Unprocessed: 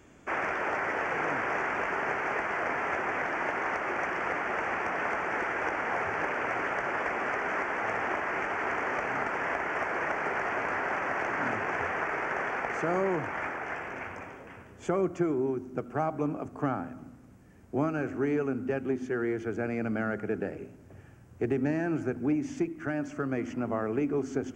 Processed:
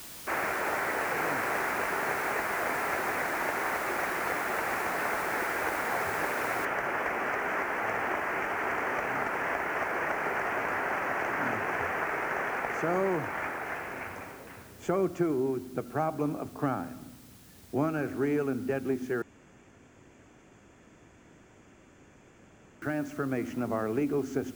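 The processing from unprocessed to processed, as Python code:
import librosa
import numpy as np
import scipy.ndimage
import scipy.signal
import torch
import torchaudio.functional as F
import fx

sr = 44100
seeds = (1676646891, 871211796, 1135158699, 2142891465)

y = fx.noise_floor_step(x, sr, seeds[0], at_s=6.65, before_db=-45, after_db=-57, tilt_db=0.0)
y = fx.edit(y, sr, fx.room_tone_fill(start_s=19.22, length_s=3.6), tone=tone)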